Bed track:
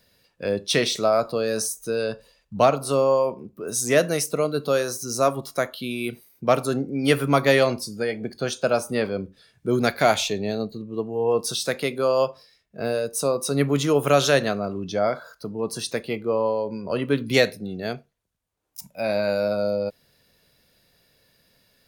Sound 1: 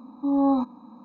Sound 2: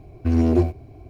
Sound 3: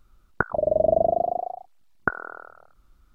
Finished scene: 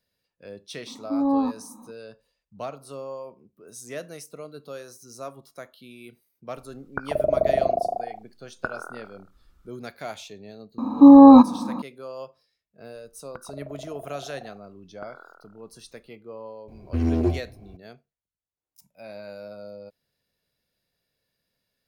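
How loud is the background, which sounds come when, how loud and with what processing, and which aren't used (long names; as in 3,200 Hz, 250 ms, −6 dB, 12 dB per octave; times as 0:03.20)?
bed track −16.5 dB
0:00.87: mix in 1 −1 dB
0:06.57: mix in 3 −1 dB + brickwall limiter −10 dBFS
0:10.78: mix in 1 −2 dB + boost into a limiter +19 dB
0:12.95: mix in 3 −10.5 dB + downward compressor, threshold −26 dBFS
0:16.68: mix in 2 −4.5 dB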